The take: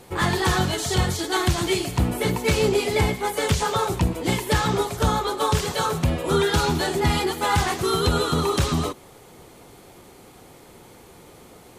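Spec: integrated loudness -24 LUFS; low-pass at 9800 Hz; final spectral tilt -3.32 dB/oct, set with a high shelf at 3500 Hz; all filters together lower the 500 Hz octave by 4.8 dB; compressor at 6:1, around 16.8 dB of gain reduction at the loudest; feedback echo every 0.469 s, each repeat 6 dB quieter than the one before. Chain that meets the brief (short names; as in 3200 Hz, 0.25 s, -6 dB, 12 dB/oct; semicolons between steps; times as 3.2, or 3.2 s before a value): LPF 9800 Hz; bell 500 Hz -6.5 dB; high shelf 3500 Hz +6.5 dB; compressor 6:1, threshold -35 dBFS; feedback echo 0.469 s, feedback 50%, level -6 dB; gain +12 dB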